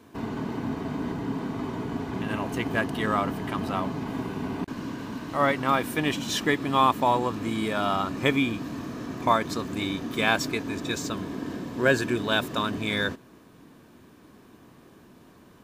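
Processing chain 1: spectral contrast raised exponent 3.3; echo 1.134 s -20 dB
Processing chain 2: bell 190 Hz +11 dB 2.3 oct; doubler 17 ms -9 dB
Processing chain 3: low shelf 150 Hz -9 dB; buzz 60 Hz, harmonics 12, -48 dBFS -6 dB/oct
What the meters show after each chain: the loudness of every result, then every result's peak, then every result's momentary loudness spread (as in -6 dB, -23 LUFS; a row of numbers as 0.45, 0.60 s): -28.5, -21.0, -28.0 LUFS; -11.0, -2.0, -6.5 dBFS; 11, 7, 11 LU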